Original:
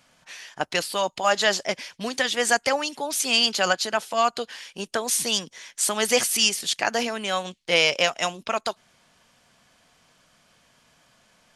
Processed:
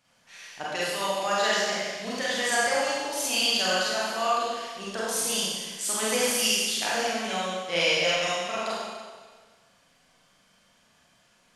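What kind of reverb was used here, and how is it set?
Schroeder reverb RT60 1.5 s, combs from 32 ms, DRR -8 dB; gain -11 dB

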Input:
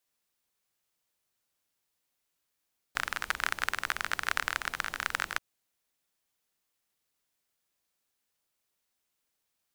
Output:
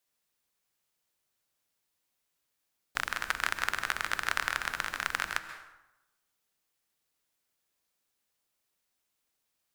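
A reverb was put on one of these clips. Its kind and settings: plate-style reverb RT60 0.94 s, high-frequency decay 0.65×, pre-delay 0.12 s, DRR 10 dB

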